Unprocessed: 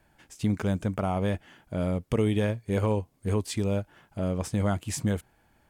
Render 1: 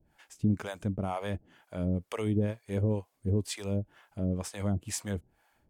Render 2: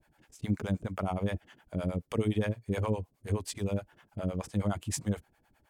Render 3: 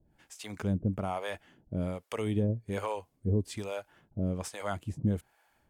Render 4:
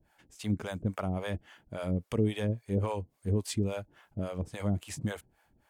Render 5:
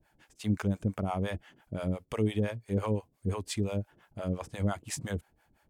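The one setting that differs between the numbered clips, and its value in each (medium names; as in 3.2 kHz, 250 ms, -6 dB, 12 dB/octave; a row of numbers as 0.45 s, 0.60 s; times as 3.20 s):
harmonic tremolo, rate: 2.1 Hz, 9.6 Hz, 1.2 Hz, 3.6 Hz, 5.8 Hz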